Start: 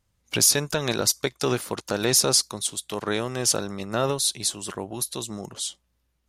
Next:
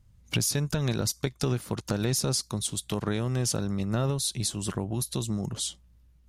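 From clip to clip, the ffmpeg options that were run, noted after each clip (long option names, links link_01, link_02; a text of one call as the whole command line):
ffmpeg -i in.wav -af "bass=frequency=250:gain=15,treble=frequency=4000:gain=0,acompressor=threshold=-27dB:ratio=3" out.wav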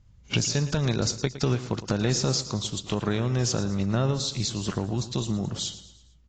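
ffmpeg -i in.wav -af "aecho=1:1:112|224|336|448:0.2|0.0898|0.0404|0.0182,volume=2.5dB" -ar 16000 -c:a aac -b:a 32k out.aac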